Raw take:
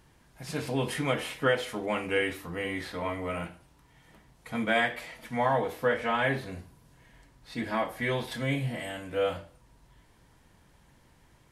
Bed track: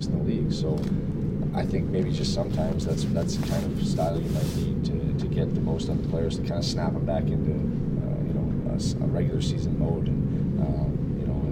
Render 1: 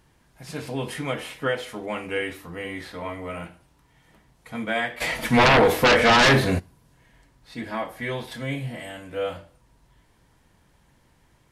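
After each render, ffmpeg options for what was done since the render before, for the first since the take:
ffmpeg -i in.wav -filter_complex "[0:a]asplit=3[link_01][link_02][link_03];[link_01]afade=type=out:start_time=5:duration=0.02[link_04];[link_02]aeval=exprs='0.251*sin(PI/2*5.01*val(0)/0.251)':channel_layout=same,afade=type=in:start_time=5:duration=0.02,afade=type=out:start_time=6.58:duration=0.02[link_05];[link_03]afade=type=in:start_time=6.58:duration=0.02[link_06];[link_04][link_05][link_06]amix=inputs=3:normalize=0" out.wav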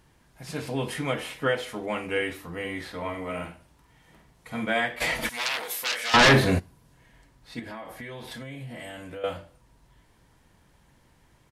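ffmpeg -i in.wav -filter_complex "[0:a]asplit=3[link_01][link_02][link_03];[link_01]afade=type=out:start_time=3.13:duration=0.02[link_04];[link_02]asplit=2[link_05][link_06];[link_06]adelay=49,volume=-6.5dB[link_07];[link_05][link_07]amix=inputs=2:normalize=0,afade=type=in:start_time=3.13:duration=0.02,afade=type=out:start_time=4.66:duration=0.02[link_08];[link_03]afade=type=in:start_time=4.66:duration=0.02[link_09];[link_04][link_08][link_09]amix=inputs=3:normalize=0,asettb=1/sr,asplit=3[link_10][link_11][link_12];[link_10]atrim=end=5.294[link_13];[link_11]atrim=start=5.29:end=6.14,asetpts=PTS-STARTPTS,afade=type=in:duration=0.004:curve=qsin,afade=type=out:start_time=0.846:duration=0.004:curve=qsin,aderivative[link_14];[link_12]atrim=start=6.136[link_15];[link_13][link_14]acrossfade=duration=0.004:curve1=hsin:curve2=qsin[link_16];[link_16][link_15]acrossfade=duration=0.004:curve1=qsin:curve2=hsin,asettb=1/sr,asplit=3[link_17][link_18][link_19];[link_17]atrim=end=7.594[link_20];[link_18]atrim=start=7.59:end=9.24,asetpts=PTS-STARTPTS,afade=type=in:duration=0.004:curve=qsin,afade=type=out:start_time=1.646:duration=0.004:curve=qsin,acompressor=threshold=-35dB:ratio=8:attack=3.2:release=140:knee=1:detection=peak[link_21];[link_19]atrim=start=9.236[link_22];[link_20][link_21]acrossfade=duration=0.004:curve1=hsin:curve2=qsin[link_23];[link_23][link_22]acrossfade=duration=0.004:curve1=qsin:curve2=hsin" out.wav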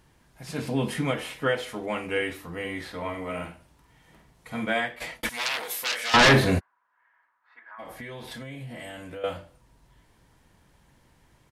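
ffmpeg -i in.wav -filter_complex "[0:a]asettb=1/sr,asplit=3[link_01][link_02][link_03];[link_01]atrim=end=0.584[link_04];[link_02]atrim=start=0.58:end=1.11,asetpts=PTS-STARTPTS,afade=type=in:duration=0.004:curve=qsin,afade=type=out:start_time=0.526:duration=0.004:curve=qsin,equalizer=frequency=200:width_type=o:width=0.79:gain=10[link_05];[link_03]atrim=start=1.106[link_06];[link_04][link_05]acrossfade=duration=0.004:curve1=hsin:curve2=qsin[link_07];[link_07][link_06]acrossfade=duration=0.004:curve1=qsin:curve2=hsin,asplit=3[link_08][link_09][link_10];[link_08]afade=type=out:start_time=6.59:duration=0.02[link_11];[link_09]asuperpass=centerf=1300:order=4:qfactor=1.7,afade=type=in:start_time=6.59:duration=0.02,afade=type=out:start_time=7.78:duration=0.02[link_12];[link_10]afade=type=in:start_time=7.78:duration=0.02[link_13];[link_11][link_12][link_13]amix=inputs=3:normalize=0,asplit=2[link_14][link_15];[link_14]atrim=end=5.23,asetpts=PTS-STARTPTS,afade=type=out:start_time=4.72:duration=0.51[link_16];[link_15]atrim=start=5.23,asetpts=PTS-STARTPTS,afade=type=in:duration=0.004:curve=hsin[link_17];[link_16][link_17]concat=n=2:v=0:a=1" out.wav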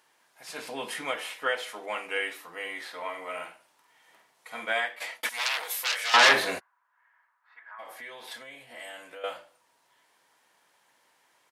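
ffmpeg -i in.wav -af "highpass=660" out.wav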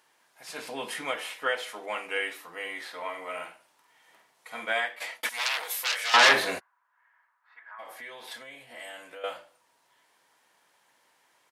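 ffmpeg -i in.wav -af anull out.wav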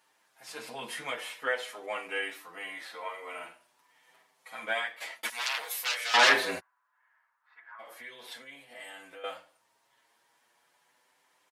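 ffmpeg -i in.wav -filter_complex "[0:a]asplit=2[link_01][link_02];[link_02]adelay=7.3,afreqshift=0.43[link_03];[link_01][link_03]amix=inputs=2:normalize=1" out.wav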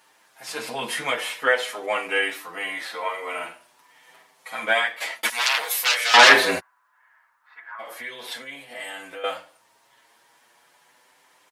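ffmpeg -i in.wav -af "volume=10.5dB,alimiter=limit=-1dB:level=0:latency=1" out.wav

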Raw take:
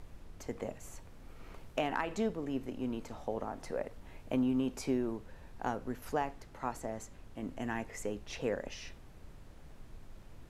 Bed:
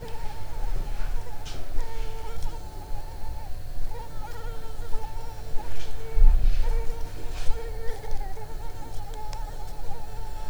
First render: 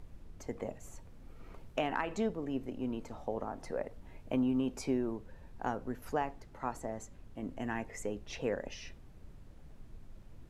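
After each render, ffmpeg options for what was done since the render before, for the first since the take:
ffmpeg -i in.wav -af "afftdn=noise_reduction=6:noise_floor=-54" out.wav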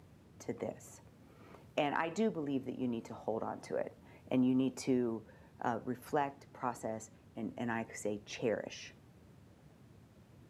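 ffmpeg -i in.wav -af "highpass=frequency=93:width=0.5412,highpass=frequency=93:width=1.3066" out.wav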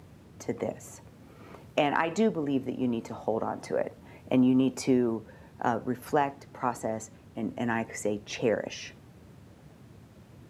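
ffmpeg -i in.wav -af "volume=8dB" out.wav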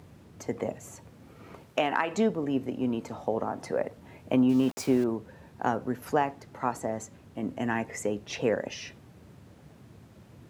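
ffmpeg -i in.wav -filter_complex "[0:a]asettb=1/sr,asplit=3[link_01][link_02][link_03];[link_01]atrim=end=1.634[link_04];[link_02]atrim=start=1.63:end=2.14,asetpts=PTS-STARTPTS,afade=type=in:duration=0.004:curve=qsin,afade=type=out:start_time=0.506:duration=0.004:curve=qsin,lowshelf=frequency=240:gain=-8.5[link_05];[link_03]atrim=start=2.136[link_06];[link_04][link_05]acrossfade=duration=0.004:curve1=hsin:curve2=qsin[link_07];[link_07][link_06]acrossfade=duration=0.004:curve1=qsin:curve2=hsin,asettb=1/sr,asplit=3[link_08][link_09][link_10];[link_08]atrim=end=4.494[link_11];[link_09]atrim=start=4.49:end=5.04,asetpts=PTS-STARTPTS,afade=type=in:duration=0.004:curve=qsin,afade=type=out:start_time=0.546:duration=0.004:curve=qsin,aeval=exprs='val(0)*gte(abs(val(0)),0.0126)':channel_layout=same[link_12];[link_10]atrim=start=5.036[link_13];[link_11][link_12]acrossfade=duration=0.004:curve1=hsin:curve2=qsin[link_14];[link_14][link_13]acrossfade=duration=0.004:curve1=qsin:curve2=hsin" out.wav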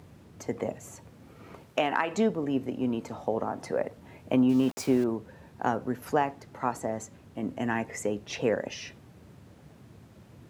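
ffmpeg -i in.wav -af anull out.wav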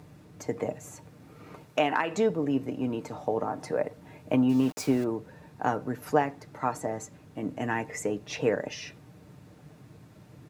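ffmpeg -i in.wav -af "bandreject=frequency=3100:width=18,aecho=1:1:6.6:0.42" out.wav

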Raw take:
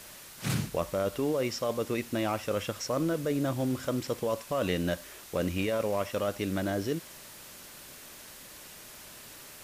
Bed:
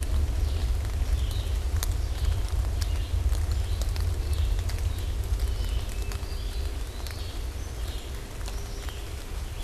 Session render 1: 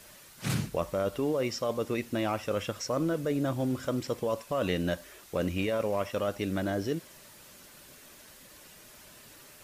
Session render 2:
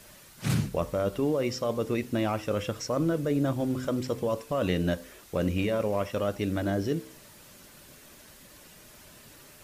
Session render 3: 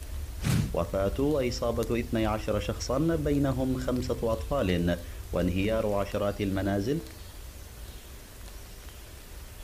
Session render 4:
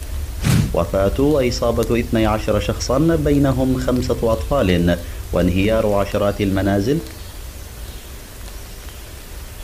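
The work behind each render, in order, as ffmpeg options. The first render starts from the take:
ffmpeg -i in.wav -af "afftdn=noise_reduction=6:noise_floor=-49" out.wav
ffmpeg -i in.wav -af "lowshelf=frequency=350:gain=5.5,bandreject=frequency=63.94:width_type=h:width=4,bandreject=frequency=127.88:width_type=h:width=4,bandreject=frequency=191.82:width_type=h:width=4,bandreject=frequency=255.76:width_type=h:width=4,bandreject=frequency=319.7:width_type=h:width=4,bandreject=frequency=383.64:width_type=h:width=4,bandreject=frequency=447.58:width_type=h:width=4,bandreject=frequency=511.52:width_type=h:width=4" out.wav
ffmpeg -i in.wav -i bed.wav -filter_complex "[1:a]volume=-11dB[link_01];[0:a][link_01]amix=inputs=2:normalize=0" out.wav
ffmpeg -i in.wav -af "volume=11dB,alimiter=limit=-3dB:level=0:latency=1" out.wav

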